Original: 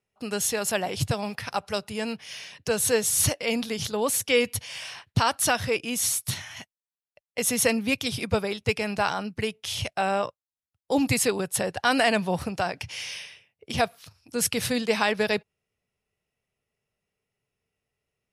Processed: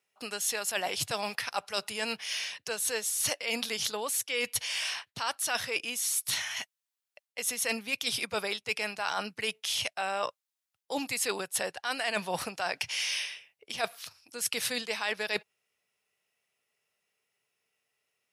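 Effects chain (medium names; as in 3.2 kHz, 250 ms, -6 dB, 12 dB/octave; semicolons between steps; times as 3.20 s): high-pass 1.2 kHz 6 dB/octave; reverse; compression 12:1, threshold -34 dBFS, peak gain reduction 15.5 dB; reverse; trim +6.5 dB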